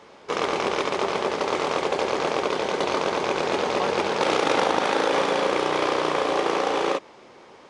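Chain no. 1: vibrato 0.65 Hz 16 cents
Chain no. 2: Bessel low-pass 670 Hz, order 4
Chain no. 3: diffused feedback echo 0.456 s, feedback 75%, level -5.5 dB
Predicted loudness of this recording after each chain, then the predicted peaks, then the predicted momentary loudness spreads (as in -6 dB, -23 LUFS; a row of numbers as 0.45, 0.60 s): -24.0, -27.5, -22.0 LUFS; -7.5, -10.5, -6.0 dBFS; 4, 3, 4 LU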